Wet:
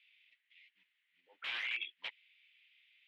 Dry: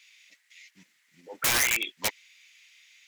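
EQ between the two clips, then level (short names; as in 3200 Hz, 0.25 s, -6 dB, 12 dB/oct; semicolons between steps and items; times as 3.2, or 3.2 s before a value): band-pass 3100 Hz, Q 2.8; air absorption 470 m; +1.0 dB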